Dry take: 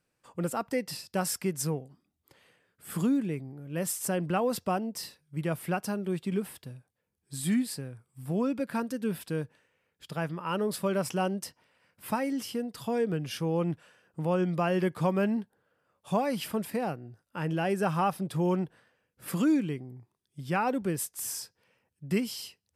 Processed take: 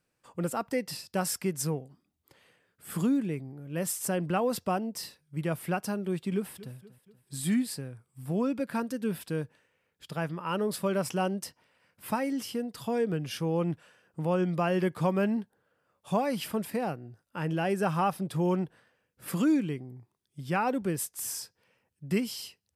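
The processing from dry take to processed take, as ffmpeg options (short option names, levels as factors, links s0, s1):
-filter_complex "[0:a]asplit=2[s0][s1];[s1]afade=t=in:st=6.34:d=0.01,afade=t=out:st=6.74:d=0.01,aecho=0:1:240|480|720|960:0.141254|0.0706269|0.0353134|0.0176567[s2];[s0][s2]amix=inputs=2:normalize=0"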